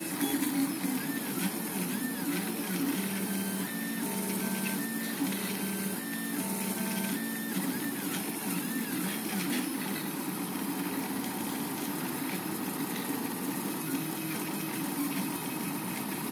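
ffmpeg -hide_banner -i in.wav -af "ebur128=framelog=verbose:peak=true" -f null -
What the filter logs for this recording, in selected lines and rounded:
Integrated loudness:
  I:         -32.8 LUFS
  Threshold: -42.8 LUFS
Loudness range:
  LRA:         1.6 LU
  Threshold: -52.8 LUFS
  LRA low:   -33.8 LUFS
  LRA high:  -32.2 LUFS
True peak:
  Peak:      -17.1 dBFS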